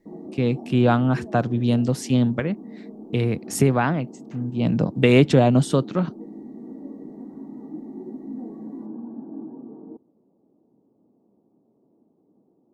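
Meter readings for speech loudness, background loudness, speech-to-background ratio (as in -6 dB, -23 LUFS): -21.0 LUFS, -38.5 LUFS, 17.5 dB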